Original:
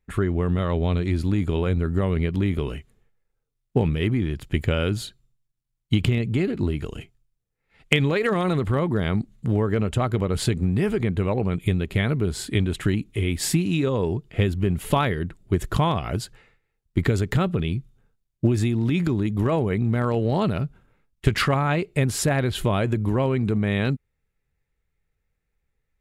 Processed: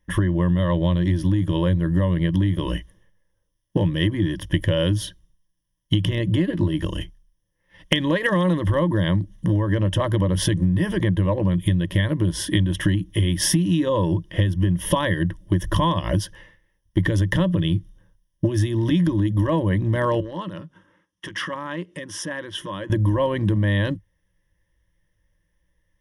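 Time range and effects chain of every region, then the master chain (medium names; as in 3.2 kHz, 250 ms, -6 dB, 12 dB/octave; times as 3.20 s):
20.20–22.90 s: compression 2:1, threshold -42 dBFS + overload inside the chain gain 27 dB + cabinet simulation 200–9300 Hz, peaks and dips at 640 Hz -7 dB, 1.3 kHz +6 dB, 4.4 kHz -4 dB
whole clip: rippled EQ curve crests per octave 1.2, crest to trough 17 dB; compression, threshold -21 dBFS; trim +4.5 dB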